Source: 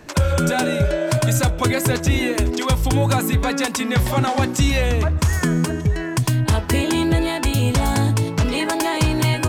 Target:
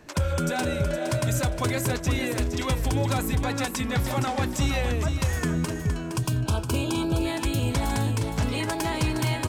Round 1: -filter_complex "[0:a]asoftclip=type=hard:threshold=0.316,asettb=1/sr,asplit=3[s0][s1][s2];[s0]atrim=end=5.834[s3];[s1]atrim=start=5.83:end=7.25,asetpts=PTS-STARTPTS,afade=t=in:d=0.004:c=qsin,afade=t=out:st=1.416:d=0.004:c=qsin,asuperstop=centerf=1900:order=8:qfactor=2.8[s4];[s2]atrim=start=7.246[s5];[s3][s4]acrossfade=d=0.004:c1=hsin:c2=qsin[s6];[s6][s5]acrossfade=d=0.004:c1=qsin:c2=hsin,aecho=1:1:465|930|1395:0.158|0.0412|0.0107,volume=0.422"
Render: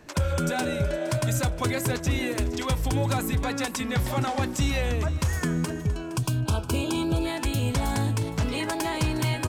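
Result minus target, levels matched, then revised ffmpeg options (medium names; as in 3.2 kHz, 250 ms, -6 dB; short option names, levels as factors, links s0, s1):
echo-to-direct -8 dB
-filter_complex "[0:a]asoftclip=type=hard:threshold=0.316,asettb=1/sr,asplit=3[s0][s1][s2];[s0]atrim=end=5.834[s3];[s1]atrim=start=5.83:end=7.25,asetpts=PTS-STARTPTS,afade=t=in:d=0.004:c=qsin,afade=t=out:st=1.416:d=0.004:c=qsin,asuperstop=centerf=1900:order=8:qfactor=2.8[s4];[s2]atrim=start=7.246[s5];[s3][s4]acrossfade=d=0.004:c1=hsin:c2=qsin[s6];[s6][s5]acrossfade=d=0.004:c1=qsin:c2=hsin,aecho=1:1:465|930|1395:0.398|0.104|0.0269,volume=0.422"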